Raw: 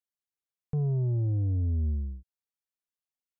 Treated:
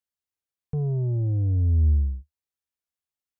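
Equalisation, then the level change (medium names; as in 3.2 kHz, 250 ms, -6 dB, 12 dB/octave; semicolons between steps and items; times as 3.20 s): dynamic bell 490 Hz, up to +4 dB, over -44 dBFS, Q 0.88; peaking EQ 74 Hz +9.5 dB 0.7 oct; 0.0 dB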